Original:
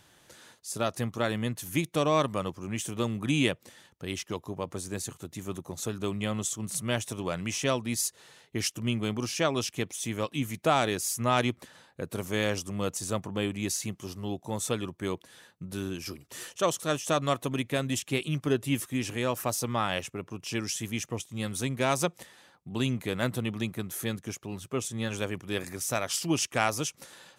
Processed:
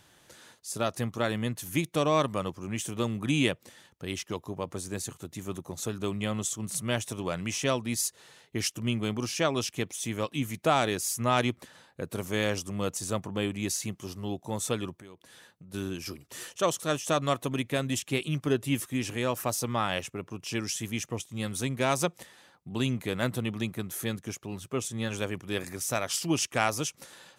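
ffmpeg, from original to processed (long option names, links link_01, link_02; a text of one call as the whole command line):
ffmpeg -i in.wav -filter_complex "[0:a]asettb=1/sr,asplit=3[link_01][link_02][link_03];[link_01]atrim=end=14.984[link_04];[link_02]atrim=start=14.98:end=15.74,asetpts=PTS-STARTPTS,afade=type=in:duration=0.004:curve=qsin,afade=type=out:start_time=0.756:duration=0.004:curve=qsin,acompressor=threshold=-48dB:ratio=4:attack=3.2:release=140:knee=1:detection=peak[link_05];[link_03]atrim=start=15.736[link_06];[link_04][link_05]acrossfade=duration=0.004:curve1=hsin:curve2=qsin[link_07];[link_07][link_06]acrossfade=duration=0.004:curve1=qsin:curve2=hsin" out.wav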